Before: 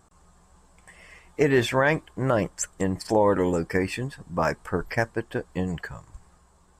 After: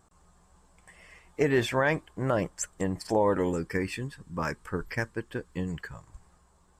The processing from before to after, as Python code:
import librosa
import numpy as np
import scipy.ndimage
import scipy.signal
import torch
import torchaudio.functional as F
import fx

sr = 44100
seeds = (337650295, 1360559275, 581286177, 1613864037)

y = fx.peak_eq(x, sr, hz=690.0, db=-11.0, octaves=0.59, at=(3.52, 5.94))
y = y * librosa.db_to_amplitude(-4.0)